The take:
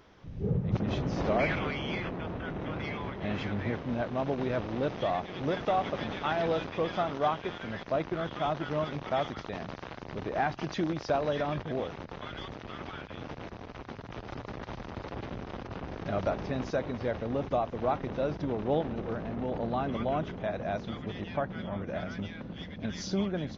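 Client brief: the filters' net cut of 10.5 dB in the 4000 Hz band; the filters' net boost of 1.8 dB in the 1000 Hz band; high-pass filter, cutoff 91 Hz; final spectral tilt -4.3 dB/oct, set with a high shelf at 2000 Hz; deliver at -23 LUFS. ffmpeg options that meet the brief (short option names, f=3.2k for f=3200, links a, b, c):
-af "highpass=91,equalizer=f=1k:t=o:g=4.5,highshelf=f=2k:g=-6,equalizer=f=4k:t=o:g=-8.5,volume=10dB"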